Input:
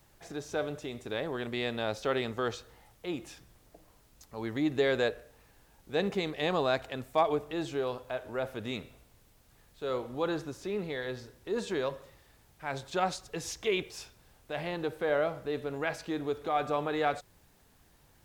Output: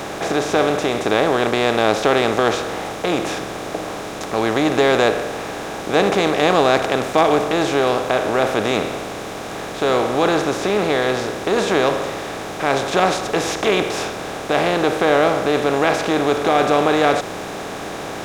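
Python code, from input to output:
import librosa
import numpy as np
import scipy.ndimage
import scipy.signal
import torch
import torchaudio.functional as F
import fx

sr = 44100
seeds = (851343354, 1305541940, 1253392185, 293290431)

y = fx.bin_compress(x, sr, power=0.4)
y = F.gain(torch.from_numpy(y), 8.0).numpy()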